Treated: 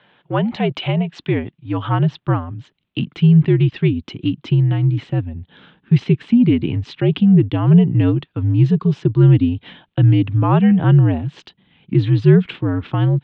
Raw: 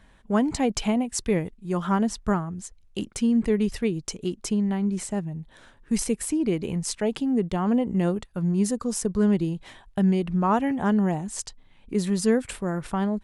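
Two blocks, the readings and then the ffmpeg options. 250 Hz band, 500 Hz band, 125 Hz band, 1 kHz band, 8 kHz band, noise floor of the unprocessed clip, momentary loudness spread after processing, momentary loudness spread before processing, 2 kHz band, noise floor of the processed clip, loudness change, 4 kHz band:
+6.5 dB, +4.0 dB, +17.0 dB, +2.5 dB, under -20 dB, -56 dBFS, 12 LU, 9 LU, +5.5 dB, -68 dBFS, +9.0 dB, +5.5 dB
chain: -af "asubboost=boost=7.5:cutoff=240,aexciter=amount=1.9:drive=4.3:freq=2.8k,highpass=f=250:t=q:w=0.5412,highpass=f=250:t=q:w=1.307,lowpass=f=3.6k:t=q:w=0.5176,lowpass=f=3.6k:t=q:w=0.7071,lowpass=f=3.6k:t=q:w=1.932,afreqshift=-71,volume=6dB"

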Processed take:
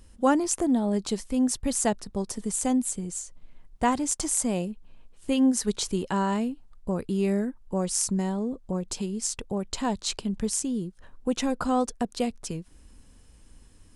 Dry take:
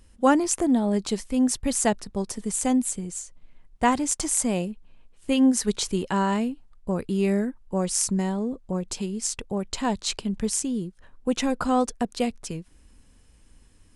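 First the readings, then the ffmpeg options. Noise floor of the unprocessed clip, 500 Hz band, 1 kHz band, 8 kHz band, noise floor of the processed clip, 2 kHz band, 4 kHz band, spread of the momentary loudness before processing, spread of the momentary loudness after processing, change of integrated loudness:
-55 dBFS, -2.0 dB, -2.5 dB, -2.0 dB, -54 dBFS, -4.0 dB, -2.5 dB, 10 LU, 9 LU, -2.0 dB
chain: -filter_complex "[0:a]equalizer=f=2.2k:w=1.4:g=-3,asplit=2[a][b];[b]acompressor=threshold=-36dB:ratio=6,volume=-0.5dB[c];[a][c]amix=inputs=2:normalize=0,volume=-3.5dB"

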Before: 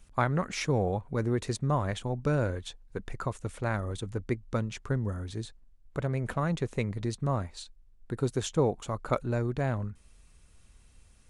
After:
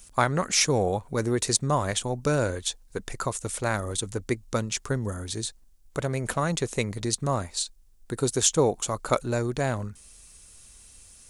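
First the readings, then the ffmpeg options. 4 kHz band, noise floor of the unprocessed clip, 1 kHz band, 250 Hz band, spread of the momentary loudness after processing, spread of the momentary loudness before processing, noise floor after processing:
+12.0 dB, -59 dBFS, +5.0 dB, +2.5 dB, 10 LU, 12 LU, -54 dBFS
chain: -af "bass=f=250:g=-5,treble=f=4k:g=14,volume=5dB"

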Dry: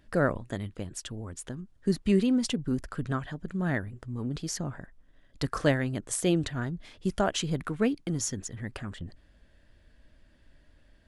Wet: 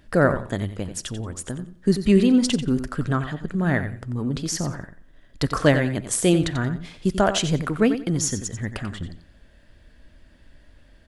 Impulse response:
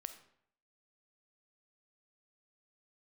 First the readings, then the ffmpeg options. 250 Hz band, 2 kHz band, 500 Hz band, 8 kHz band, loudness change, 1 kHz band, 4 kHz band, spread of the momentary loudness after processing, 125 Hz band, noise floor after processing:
+7.5 dB, +7.5 dB, +7.5 dB, +7.5 dB, +7.5 dB, +7.5 dB, +7.5 dB, 13 LU, +7.5 dB, -53 dBFS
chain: -filter_complex "[0:a]aecho=1:1:90|180|270:0.299|0.0597|0.0119,asplit=2[a][b];[1:a]atrim=start_sample=2205[c];[b][c]afir=irnorm=-1:irlink=0,volume=-7dB[d];[a][d]amix=inputs=2:normalize=0,volume=5dB"

